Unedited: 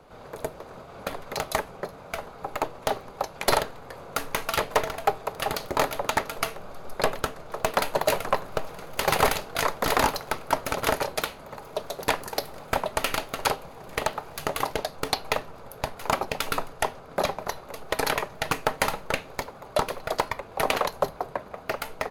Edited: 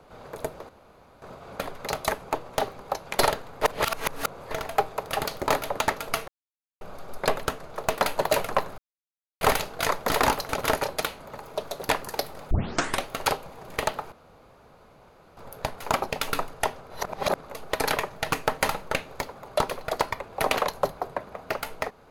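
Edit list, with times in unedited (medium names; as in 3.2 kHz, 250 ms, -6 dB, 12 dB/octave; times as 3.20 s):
0.69 s: insert room tone 0.53 s
1.78–2.60 s: delete
3.91–4.80 s: reverse
6.57 s: insert silence 0.53 s
8.54–9.17 s: mute
10.25–10.68 s: delete
12.70 s: tape start 0.55 s
14.31–15.56 s: room tone
17.09–17.62 s: reverse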